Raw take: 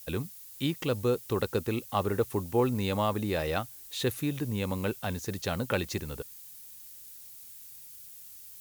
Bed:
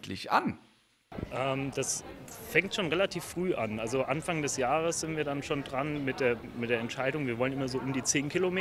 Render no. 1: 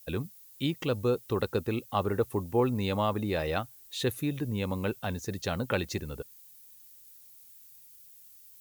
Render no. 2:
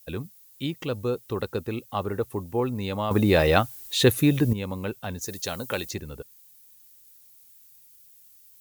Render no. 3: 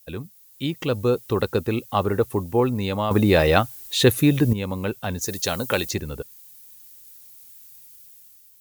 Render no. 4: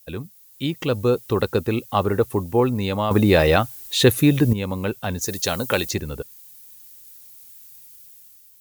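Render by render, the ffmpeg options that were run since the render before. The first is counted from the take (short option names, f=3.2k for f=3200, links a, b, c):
-af "afftdn=nr=8:nf=-48"
-filter_complex "[0:a]asettb=1/sr,asplit=3[a][b][c];[a]atrim=end=5.214[d];[b]atrim=start=5.21:end=5.91,asetpts=PTS-STARTPTS,afade=t=in:d=0.004:c=qsin,afade=t=out:st=0.696:d=0.004:c=qsin,bass=f=250:g=-5,treble=f=4k:g=11[e];[c]atrim=start=5.906[f];[d][e]acrossfade=d=0.004:c1=hsin:c2=qsin[g];[g][f]acrossfade=d=0.004:c1=qsin:c2=hsin,asplit=3[h][i][j];[h]atrim=end=3.112[k];[i]atrim=start=3.108:end=4.532,asetpts=PTS-STARTPTS,volume=11dB[l];[j]atrim=start=4.528[m];[k][l]acrossfade=d=0.004:c1=hsin:c2=hsin[n];[n][m]acrossfade=d=0.004:c1=hsin:c2=hsin"
-af "dynaudnorm=f=290:g=5:m=7dB"
-af "volume=1.5dB,alimiter=limit=-3dB:level=0:latency=1"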